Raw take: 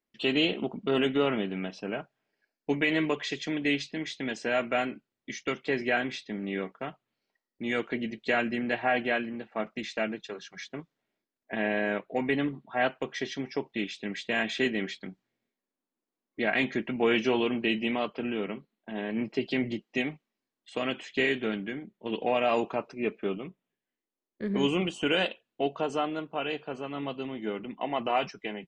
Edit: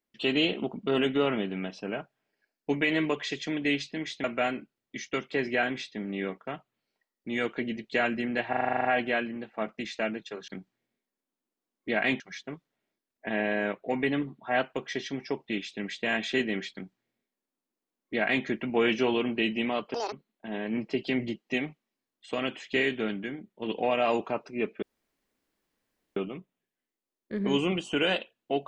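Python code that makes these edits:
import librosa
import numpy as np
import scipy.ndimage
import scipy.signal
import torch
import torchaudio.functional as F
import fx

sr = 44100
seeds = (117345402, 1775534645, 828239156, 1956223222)

y = fx.edit(x, sr, fx.cut(start_s=4.24, length_s=0.34),
    fx.stutter(start_s=8.83, slice_s=0.04, count=10),
    fx.duplicate(start_s=14.99, length_s=1.72, to_s=10.46),
    fx.speed_span(start_s=18.2, length_s=0.36, speed=1.96),
    fx.insert_room_tone(at_s=23.26, length_s=1.34), tone=tone)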